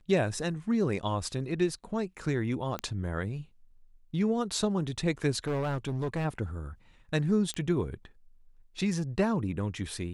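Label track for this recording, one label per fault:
2.790000	2.790000	click −19 dBFS
5.470000	6.260000	clipping −27 dBFS
7.540000	7.540000	click −21 dBFS

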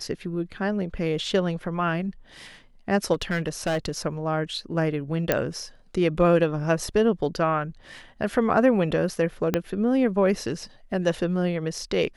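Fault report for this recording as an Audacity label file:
3.130000	3.980000	clipping −21 dBFS
5.320000	5.320000	click −6 dBFS
9.540000	9.540000	click −8 dBFS

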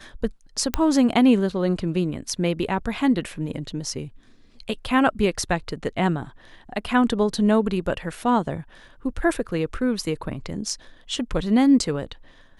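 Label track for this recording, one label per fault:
0.740000	0.740000	click −7 dBFS

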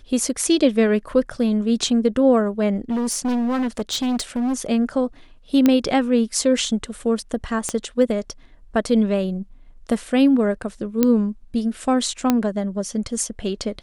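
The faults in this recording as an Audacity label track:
2.900000	4.660000	clipping −19 dBFS
5.660000	5.660000	click −4 dBFS
7.690000	7.690000	click −10 dBFS
11.030000	11.030000	click −4 dBFS
12.300000	12.300000	click −4 dBFS

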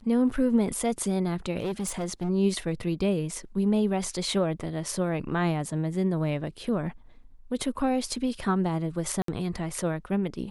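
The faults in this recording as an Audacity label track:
1.580000	2.300000	clipping −26 dBFS
9.220000	9.280000	drop-out 63 ms

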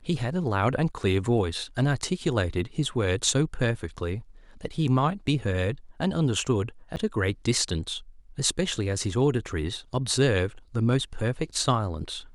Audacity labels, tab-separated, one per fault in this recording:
6.960000	6.970000	drop-out 9.2 ms

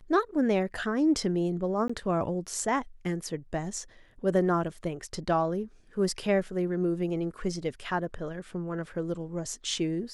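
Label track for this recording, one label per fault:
1.880000	1.900000	drop-out 15 ms

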